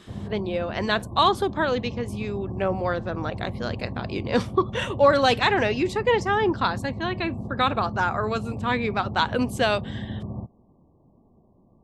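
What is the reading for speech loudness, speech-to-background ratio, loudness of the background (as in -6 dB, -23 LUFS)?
-25.0 LUFS, 9.5 dB, -34.5 LUFS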